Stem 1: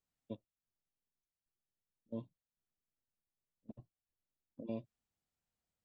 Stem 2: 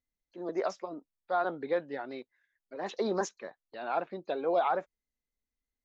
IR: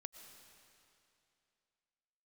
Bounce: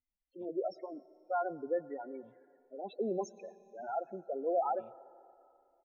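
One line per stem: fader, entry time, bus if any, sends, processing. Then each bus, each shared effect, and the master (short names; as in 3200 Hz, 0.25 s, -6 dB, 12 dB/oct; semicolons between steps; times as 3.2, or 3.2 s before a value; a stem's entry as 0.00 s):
-10.5 dB, 0.10 s, no send, HPF 170 Hz; fixed phaser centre 1300 Hz, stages 6
-5.5 dB, 0.00 s, send -4 dB, loudest bins only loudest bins 8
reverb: on, RT60 2.7 s, pre-delay 75 ms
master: dry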